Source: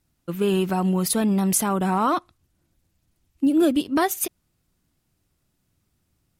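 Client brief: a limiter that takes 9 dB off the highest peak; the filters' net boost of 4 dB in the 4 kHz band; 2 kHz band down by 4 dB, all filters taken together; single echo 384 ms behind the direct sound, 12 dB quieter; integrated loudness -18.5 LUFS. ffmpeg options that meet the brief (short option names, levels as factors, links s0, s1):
-af "equalizer=f=2000:t=o:g=-7.5,equalizer=f=4000:t=o:g=7.5,alimiter=limit=0.178:level=0:latency=1,aecho=1:1:384:0.251,volume=2"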